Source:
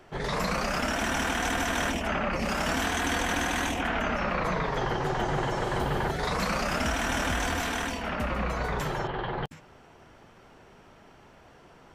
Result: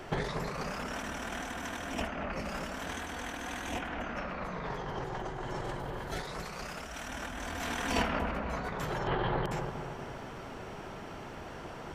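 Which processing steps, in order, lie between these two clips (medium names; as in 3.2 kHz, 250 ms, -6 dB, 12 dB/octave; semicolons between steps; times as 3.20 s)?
5.99–7.08 s: treble shelf 2.2 kHz +6.5 dB; compressor with a negative ratio -35 dBFS, ratio -0.5; feedback echo behind a low-pass 237 ms, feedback 47%, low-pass 1.5 kHz, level -4.5 dB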